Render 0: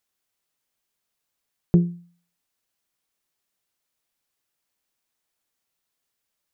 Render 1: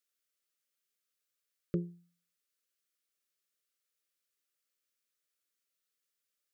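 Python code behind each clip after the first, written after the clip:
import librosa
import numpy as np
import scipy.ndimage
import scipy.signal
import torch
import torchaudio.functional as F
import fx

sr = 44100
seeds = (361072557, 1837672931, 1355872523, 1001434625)

y = scipy.signal.sosfilt(scipy.signal.cheby1(3, 1.0, [570.0, 1200.0], 'bandstop', fs=sr, output='sos'), x)
y = fx.bass_treble(y, sr, bass_db=-13, treble_db=1)
y = y * 10.0 ** (-6.5 / 20.0)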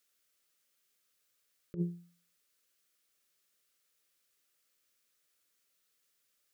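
y = fx.over_compress(x, sr, threshold_db=-37.0, ratio=-0.5)
y = y * 10.0 ** (4.5 / 20.0)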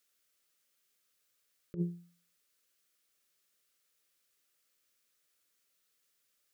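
y = x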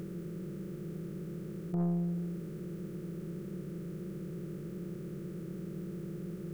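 y = fx.bin_compress(x, sr, power=0.2)
y = 10.0 ** (-32.5 / 20.0) * np.tanh(y / 10.0 ** (-32.5 / 20.0))
y = y * 10.0 ** (5.5 / 20.0)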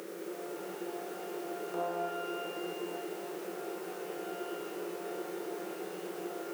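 y = scipy.signal.sosfilt(scipy.signal.butter(4, 410.0, 'highpass', fs=sr, output='sos'), x)
y = fx.rev_shimmer(y, sr, seeds[0], rt60_s=2.9, semitones=12, shimmer_db=-8, drr_db=-1.5)
y = y * 10.0 ** (7.5 / 20.0)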